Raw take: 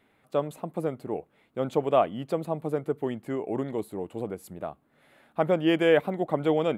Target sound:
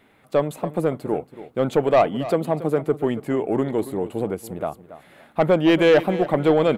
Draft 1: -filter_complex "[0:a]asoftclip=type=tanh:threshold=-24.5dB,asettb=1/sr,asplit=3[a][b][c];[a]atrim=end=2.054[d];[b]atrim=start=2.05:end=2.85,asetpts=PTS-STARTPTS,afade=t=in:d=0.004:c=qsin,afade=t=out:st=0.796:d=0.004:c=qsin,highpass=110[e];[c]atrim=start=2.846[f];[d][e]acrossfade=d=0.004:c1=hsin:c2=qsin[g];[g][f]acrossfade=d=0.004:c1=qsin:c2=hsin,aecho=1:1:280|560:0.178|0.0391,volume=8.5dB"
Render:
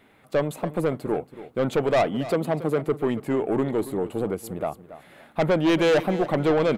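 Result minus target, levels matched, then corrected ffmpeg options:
soft clip: distortion +7 dB
-filter_complex "[0:a]asoftclip=type=tanh:threshold=-17dB,asettb=1/sr,asplit=3[a][b][c];[a]atrim=end=2.054[d];[b]atrim=start=2.05:end=2.85,asetpts=PTS-STARTPTS,afade=t=in:d=0.004:c=qsin,afade=t=out:st=0.796:d=0.004:c=qsin,highpass=110[e];[c]atrim=start=2.846[f];[d][e]acrossfade=d=0.004:c1=hsin:c2=qsin[g];[g][f]acrossfade=d=0.004:c1=qsin:c2=hsin,aecho=1:1:280|560:0.178|0.0391,volume=8.5dB"

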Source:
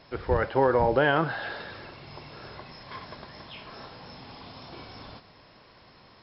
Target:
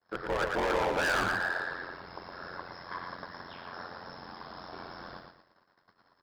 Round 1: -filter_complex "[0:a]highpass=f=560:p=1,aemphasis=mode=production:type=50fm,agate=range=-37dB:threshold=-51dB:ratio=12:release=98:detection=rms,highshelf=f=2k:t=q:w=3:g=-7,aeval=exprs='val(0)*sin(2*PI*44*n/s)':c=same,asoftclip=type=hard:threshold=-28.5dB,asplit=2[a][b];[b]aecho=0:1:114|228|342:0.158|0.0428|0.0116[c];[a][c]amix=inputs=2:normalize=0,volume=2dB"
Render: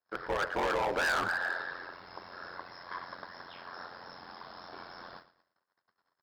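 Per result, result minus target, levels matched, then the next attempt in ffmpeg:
echo-to-direct -11 dB; 250 Hz band -4.0 dB
-filter_complex "[0:a]highpass=f=560:p=1,aemphasis=mode=production:type=50fm,agate=range=-37dB:threshold=-51dB:ratio=12:release=98:detection=rms,highshelf=f=2k:t=q:w=3:g=-7,aeval=exprs='val(0)*sin(2*PI*44*n/s)':c=same,asoftclip=type=hard:threshold=-28.5dB,asplit=2[a][b];[b]aecho=0:1:114|228|342|456:0.562|0.152|0.041|0.0111[c];[a][c]amix=inputs=2:normalize=0,volume=2dB"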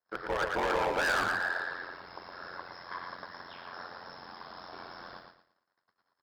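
250 Hz band -4.0 dB
-filter_complex "[0:a]highpass=f=220:p=1,aemphasis=mode=production:type=50fm,agate=range=-37dB:threshold=-51dB:ratio=12:release=98:detection=rms,highshelf=f=2k:t=q:w=3:g=-7,aeval=exprs='val(0)*sin(2*PI*44*n/s)':c=same,asoftclip=type=hard:threshold=-28.5dB,asplit=2[a][b];[b]aecho=0:1:114|228|342|456:0.562|0.152|0.041|0.0111[c];[a][c]amix=inputs=2:normalize=0,volume=2dB"

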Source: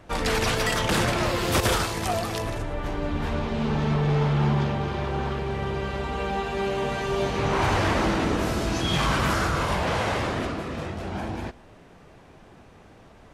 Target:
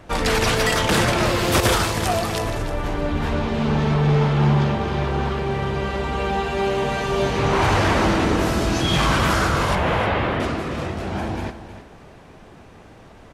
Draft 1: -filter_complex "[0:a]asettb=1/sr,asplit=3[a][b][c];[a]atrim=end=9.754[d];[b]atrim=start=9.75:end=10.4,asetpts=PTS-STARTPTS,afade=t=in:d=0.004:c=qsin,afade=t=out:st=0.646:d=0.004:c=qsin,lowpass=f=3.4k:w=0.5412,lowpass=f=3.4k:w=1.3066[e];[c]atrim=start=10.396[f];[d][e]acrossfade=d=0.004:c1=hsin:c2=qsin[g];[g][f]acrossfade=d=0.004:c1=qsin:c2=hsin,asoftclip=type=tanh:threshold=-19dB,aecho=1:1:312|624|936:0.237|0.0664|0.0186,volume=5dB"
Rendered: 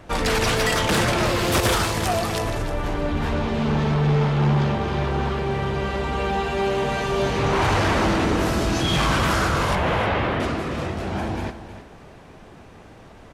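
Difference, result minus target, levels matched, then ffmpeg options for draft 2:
soft clip: distortion +13 dB
-filter_complex "[0:a]asettb=1/sr,asplit=3[a][b][c];[a]atrim=end=9.754[d];[b]atrim=start=9.75:end=10.4,asetpts=PTS-STARTPTS,afade=t=in:d=0.004:c=qsin,afade=t=out:st=0.646:d=0.004:c=qsin,lowpass=f=3.4k:w=0.5412,lowpass=f=3.4k:w=1.3066[e];[c]atrim=start=10.396[f];[d][e]acrossfade=d=0.004:c1=hsin:c2=qsin[g];[g][f]acrossfade=d=0.004:c1=qsin:c2=hsin,asoftclip=type=tanh:threshold=-11dB,aecho=1:1:312|624|936:0.237|0.0664|0.0186,volume=5dB"

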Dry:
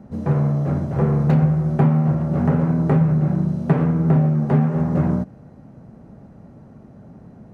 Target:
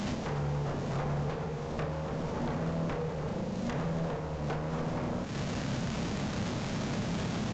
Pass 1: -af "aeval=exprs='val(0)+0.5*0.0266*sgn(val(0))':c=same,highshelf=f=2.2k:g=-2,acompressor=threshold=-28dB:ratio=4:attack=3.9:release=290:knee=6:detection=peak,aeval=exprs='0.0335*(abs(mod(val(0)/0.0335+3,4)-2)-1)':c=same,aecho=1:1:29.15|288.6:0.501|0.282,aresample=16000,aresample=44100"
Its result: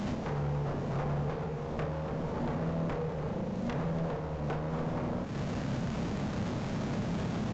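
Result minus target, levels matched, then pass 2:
4000 Hz band -5.0 dB
-af "aeval=exprs='val(0)+0.5*0.0266*sgn(val(0))':c=same,highshelf=f=2.2k:g=7,acompressor=threshold=-28dB:ratio=4:attack=3.9:release=290:knee=6:detection=peak,aeval=exprs='0.0335*(abs(mod(val(0)/0.0335+3,4)-2)-1)':c=same,aecho=1:1:29.15|288.6:0.501|0.282,aresample=16000,aresample=44100"

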